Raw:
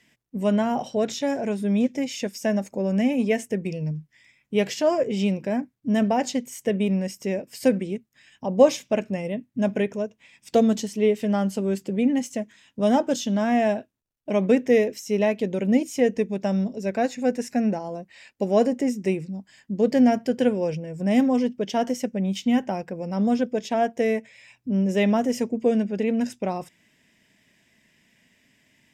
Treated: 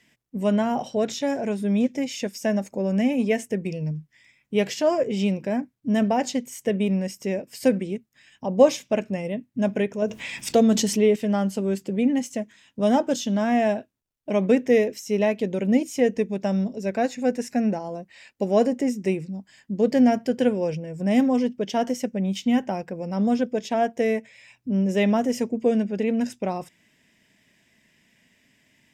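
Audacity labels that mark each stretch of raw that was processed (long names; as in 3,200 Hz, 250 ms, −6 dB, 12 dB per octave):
10.020000	11.160000	envelope flattener amount 50%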